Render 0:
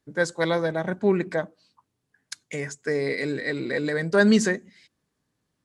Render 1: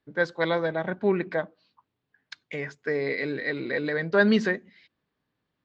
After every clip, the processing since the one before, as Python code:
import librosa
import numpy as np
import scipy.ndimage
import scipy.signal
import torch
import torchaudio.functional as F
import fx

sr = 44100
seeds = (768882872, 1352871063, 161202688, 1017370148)

y = scipy.signal.sosfilt(scipy.signal.butter(4, 4000.0, 'lowpass', fs=sr, output='sos'), x)
y = fx.low_shelf(y, sr, hz=340.0, db=-5.0)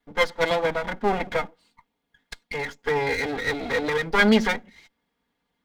y = fx.lower_of_two(x, sr, delay_ms=4.2)
y = fx.small_body(y, sr, hz=(870.0, 2100.0, 3300.0), ring_ms=45, db=9)
y = y * librosa.db_to_amplitude(4.5)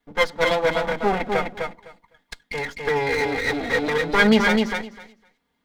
y = fx.echo_feedback(x, sr, ms=254, feedback_pct=15, wet_db=-4.5)
y = y * librosa.db_to_amplitude(1.5)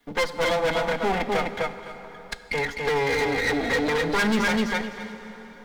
y = np.clip(x, -10.0 ** (-19.5 / 20.0), 10.0 ** (-19.5 / 20.0))
y = fx.rev_plate(y, sr, seeds[0], rt60_s=2.7, hf_ratio=0.75, predelay_ms=0, drr_db=12.5)
y = fx.band_squash(y, sr, depth_pct=40)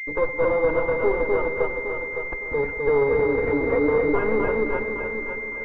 y = fx.fixed_phaser(x, sr, hz=730.0, stages=6)
y = fx.echo_feedback(y, sr, ms=560, feedback_pct=34, wet_db=-7.5)
y = fx.pwm(y, sr, carrier_hz=2100.0)
y = y * librosa.db_to_amplitude(6.0)